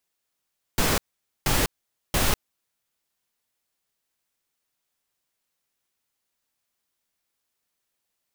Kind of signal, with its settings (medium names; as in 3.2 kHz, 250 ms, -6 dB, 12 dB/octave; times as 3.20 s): noise bursts pink, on 0.20 s, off 0.48 s, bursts 3, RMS -21.5 dBFS